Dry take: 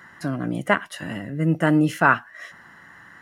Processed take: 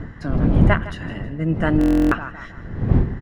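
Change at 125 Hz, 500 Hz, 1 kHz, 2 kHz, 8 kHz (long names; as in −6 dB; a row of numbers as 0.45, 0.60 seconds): +7.0 dB, +1.0 dB, −4.5 dB, −4.0 dB, can't be measured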